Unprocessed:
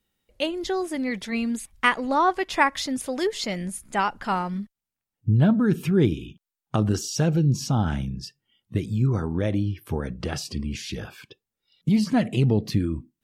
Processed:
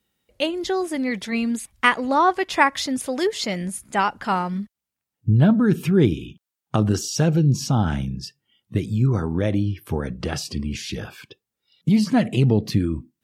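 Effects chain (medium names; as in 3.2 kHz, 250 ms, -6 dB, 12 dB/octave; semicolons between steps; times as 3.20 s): high-pass 60 Hz; trim +3 dB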